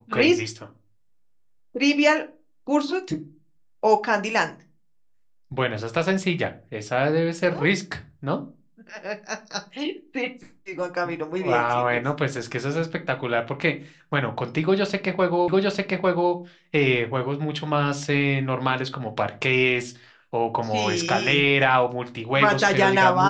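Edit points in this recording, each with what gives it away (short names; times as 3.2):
15.48 repeat of the last 0.85 s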